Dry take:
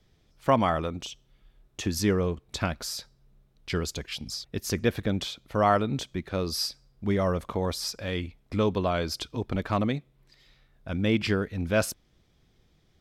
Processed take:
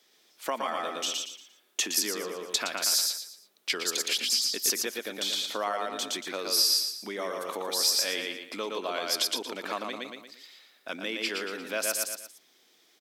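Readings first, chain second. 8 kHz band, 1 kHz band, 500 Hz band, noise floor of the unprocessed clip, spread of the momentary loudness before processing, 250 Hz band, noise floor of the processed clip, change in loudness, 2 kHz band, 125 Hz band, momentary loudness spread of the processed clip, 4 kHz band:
+10.0 dB, -4.5 dB, -6.0 dB, -65 dBFS, 11 LU, -12.0 dB, -64 dBFS, +0.5 dB, +1.0 dB, under -25 dB, 14 LU, +8.0 dB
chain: on a send: feedback delay 116 ms, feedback 34%, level -3.5 dB; on the sum: compression 6:1, threshold -29 dBFS, peak gain reduction 12.5 dB; high-pass 260 Hz 24 dB/octave; tilt EQ +3 dB/octave; trim +3 dB

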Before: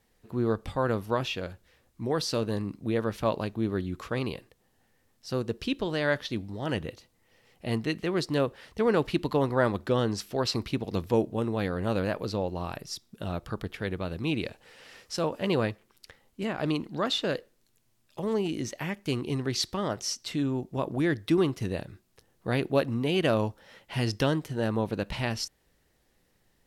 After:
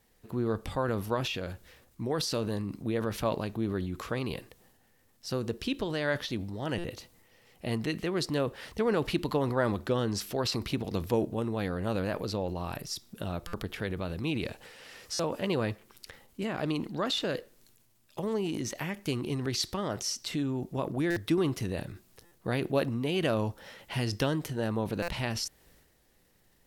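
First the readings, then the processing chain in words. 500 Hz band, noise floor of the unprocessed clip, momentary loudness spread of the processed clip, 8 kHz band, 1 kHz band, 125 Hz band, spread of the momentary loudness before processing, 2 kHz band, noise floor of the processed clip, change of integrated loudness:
-3.0 dB, -69 dBFS, 9 LU, +1.0 dB, -2.5 dB, -2.0 dB, 10 LU, -2.0 dB, -66 dBFS, -2.5 dB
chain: treble shelf 11 kHz +7 dB; in parallel at 0 dB: compression, threshold -38 dBFS, peak gain reduction 18 dB; on the sum: transient shaper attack +2 dB, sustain +7 dB; buffer glitch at 6.78/13.47/15.13/21.10/22.25/25.02 s, samples 256, times 10; trim -5.5 dB

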